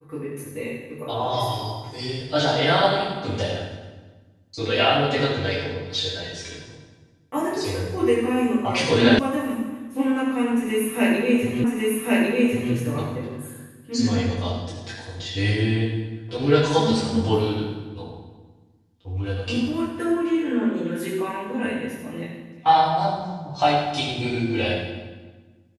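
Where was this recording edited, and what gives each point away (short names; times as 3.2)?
9.19 sound cut off
11.64 repeat of the last 1.1 s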